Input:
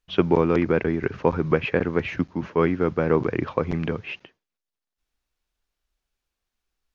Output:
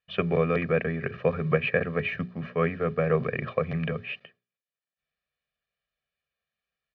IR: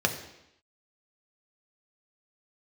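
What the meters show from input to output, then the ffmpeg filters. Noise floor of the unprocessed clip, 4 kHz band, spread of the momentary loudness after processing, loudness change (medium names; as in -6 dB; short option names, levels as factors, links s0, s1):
under -85 dBFS, -3.0 dB, 7 LU, -4.0 dB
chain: -af "highpass=120,equalizer=f=150:t=q:w=4:g=5,equalizer=f=240:t=q:w=4:g=5,equalizer=f=360:t=q:w=4:g=-3,equalizer=f=1000:t=q:w=4:g=-7,equalizer=f=1600:t=q:w=4:g=5,equalizer=f=2400:t=q:w=4:g=4,lowpass=f=4000:w=0.5412,lowpass=f=4000:w=1.3066,bandreject=f=60:t=h:w=6,bandreject=f=120:t=h:w=6,bandreject=f=180:t=h:w=6,bandreject=f=240:t=h:w=6,bandreject=f=300:t=h:w=6,bandreject=f=360:t=h:w=6,bandreject=f=420:t=h:w=6,aecho=1:1:1.7:0.95,volume=0.531"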